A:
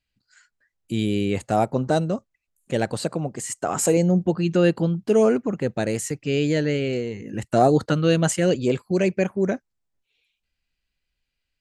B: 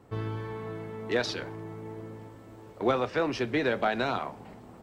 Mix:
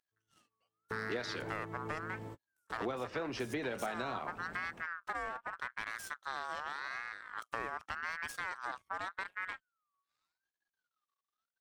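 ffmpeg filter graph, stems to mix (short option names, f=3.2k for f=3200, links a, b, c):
-filter_complex "[0:a]aeval=exprs='max(val(0),0)':c=same,aeval=exprs='val(0)*sin(2*PI*1400*n/s+1400*0.2/0.85*sin(2*PI*0.85*n/s))':c=same,volume=-8.5dB,asplit=2[a][b];[1:a]volume=1dB[c];[b]apad=whole_len=212795[d];[c][d]sidechaingate=range=-58dB:threshold=-60dB:ratio=16:detection=peak[e];[a][e]amix=inputs=2:normalize=0,acompressor=threshold=-35dB:ratio=6"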